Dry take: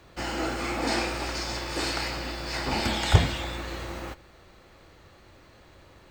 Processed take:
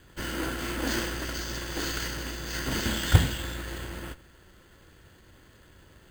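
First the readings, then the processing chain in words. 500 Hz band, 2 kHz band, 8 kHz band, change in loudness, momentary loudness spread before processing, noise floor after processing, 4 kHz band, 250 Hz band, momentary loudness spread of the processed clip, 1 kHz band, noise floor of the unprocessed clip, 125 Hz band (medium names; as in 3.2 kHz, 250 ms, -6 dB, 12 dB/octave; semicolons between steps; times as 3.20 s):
-4.0 dB, -1.5 dB, +2.0 dB, -1.5 dB, 13 LU, -56 dBFS, -2.5 dB, -1.0 dB, 14 LU, -6.5 dB, -54 dBFS, 0.0 dB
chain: comb filter that takes the minimum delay 0.63 ms; band-stop 1.2 kHz, Q 7.1; careless resampling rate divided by 4×, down filtered, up hold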